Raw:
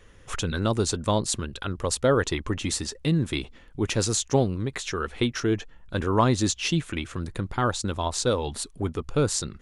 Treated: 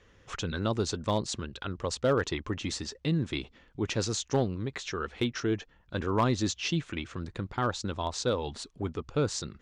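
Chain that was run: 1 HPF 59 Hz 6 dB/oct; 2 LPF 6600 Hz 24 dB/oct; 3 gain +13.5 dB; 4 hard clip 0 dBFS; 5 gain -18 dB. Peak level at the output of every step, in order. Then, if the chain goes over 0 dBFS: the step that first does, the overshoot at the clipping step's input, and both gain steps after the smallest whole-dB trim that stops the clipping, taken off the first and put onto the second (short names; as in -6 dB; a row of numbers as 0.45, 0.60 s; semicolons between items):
-6.5, -6.5, +7.0, 0.0, -18.0 dBFS; step 3, 7.0 dB; step 3 +6.5 dB, step 5 -11 dB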